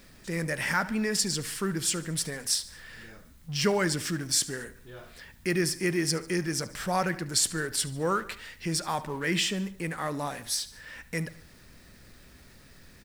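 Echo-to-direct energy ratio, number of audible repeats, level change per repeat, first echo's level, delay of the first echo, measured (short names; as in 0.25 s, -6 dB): -17.0 dB, 3, -5.0 dB, -18.5 dB, 73 ms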